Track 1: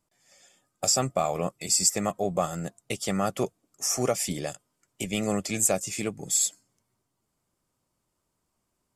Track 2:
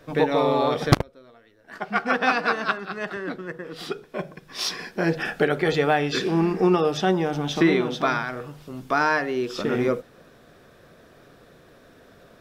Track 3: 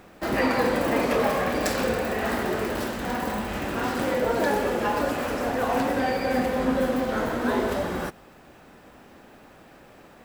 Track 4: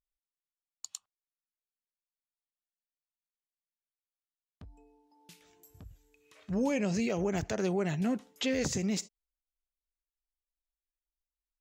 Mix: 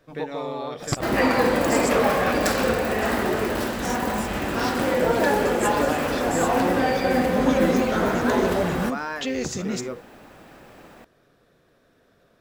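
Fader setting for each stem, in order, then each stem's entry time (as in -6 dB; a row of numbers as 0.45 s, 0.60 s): -10.5 dB, -9.5 dB, +3.0 dB, +2.5 dB; 0.00 s, 0.00 s, 0.80 s, 0.80 s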